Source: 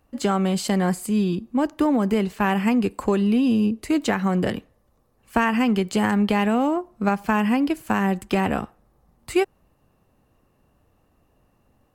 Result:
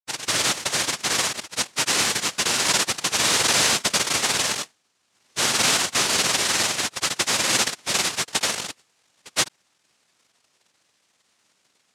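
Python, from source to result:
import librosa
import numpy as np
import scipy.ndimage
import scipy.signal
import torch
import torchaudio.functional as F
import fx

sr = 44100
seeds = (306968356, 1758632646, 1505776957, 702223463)

y = np.minimum(x, 2.0 * 10.0 ** (-15.0 / 20.0) - x)
y = fx.granulator(y, sr, seeds[0], grain_ms=100.0, per_s=20.0, spray_ms=100.0, spread_st=0)
y = fx.noise_vocoder(y, sr, seeds[1], bands=1)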